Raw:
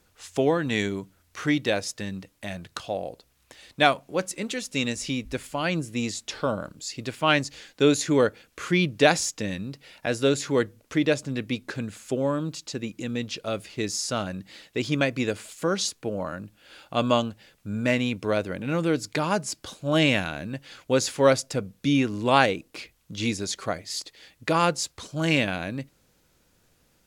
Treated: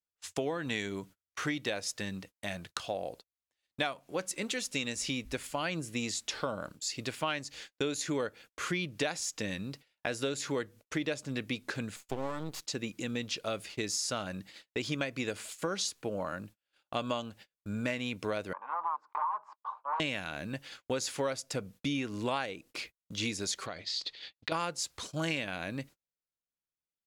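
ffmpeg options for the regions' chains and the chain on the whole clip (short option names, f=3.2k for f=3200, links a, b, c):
-filter_complex "[0:a]asettb=1/sr,asplit=3[a][b][c];[a]atrim=end=11.964[d];[b]atrim=start=11.96:end=12.65,asetpts=PTS-STARTPTS,afade=t=in:d=0.004:c=qsin,afade=t=out:st=0.686:d=0.004:c=qsin,aeval=exprs='max(val(0),0)':c=same,bandreject=f=1.6k:w=13[e];[c]atrim=start=12.646[f];[d][e]acrossfade=d=0.004:c1=hsin:c2=qsin[g];[g][f]acrossfade=d=0.004:c1=qsin:c2=hsin,asettb=1/sr,asplit=3[h][i][j];[h]atrim=end=18.534[k];[i]atrim=start=18.53:end=20,asetpts=PTS-STARTPTS,afade=t=in:d=0.004:c=qsin,afade=t=out:st=1.466:d=0.004:c=qsin,aeval=exprs='0.316*sin(PI/2*3.98*val(0)/0.316)':c=same,asuperpass=centerf=1000:order=4:qfactor=3.9[l];[j]atrim=start=19.996[m];[k][l]acrossfade=d=0.004:c1=hsin:c2=qsin[n];[n][m]acrossfade=d=0.004:c1=qsin:c2=hsin,asettb=1/sr,asplit=3[o][p][q];[o]atrim=end=23.664[r];[p]atrim=start=23.66:end=24.52,asetpts=PTS-STARTPTS,afade=t=in:d=0.004:c=qsin,afade=t=out:st=0.856:d=0.004:c=qsin,acompressor=threshold=-34dB:ratio=4:attack=3.2:release=140:knee=1:detection=peak,lowpass=f=4k:t=q:w=2.8[s];[q]atrim=start=24.516[t];[r][s]acrossfade=d=0.004:c1=hsin:c2=qsin[u];[u][t]acrossfade=d=0.004:c1=qsin:c2=hsin,agate=range=-36dB:threshold=-44dB:ratio=16:detection=peak,lowshelf=f=500:g=-6,acompressor=threshold=-30dB:ratio=6"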